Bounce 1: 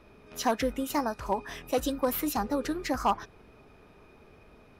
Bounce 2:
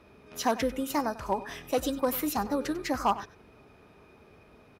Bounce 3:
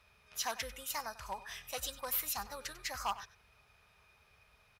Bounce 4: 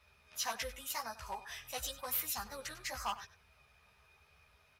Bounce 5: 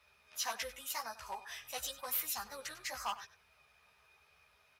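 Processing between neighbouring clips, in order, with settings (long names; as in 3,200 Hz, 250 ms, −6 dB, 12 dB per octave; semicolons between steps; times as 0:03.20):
high-pass filter 56 Hz; single-tap delay 96 ms −16.5 dB
guitar amp tone stack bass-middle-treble 10-0-10
multi-voice chorus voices 2, 0.9 Hz, delay 14 ms, depth 1.8 ms; level +2.5 dB
low-shelf EQ 210 Hz −11 dB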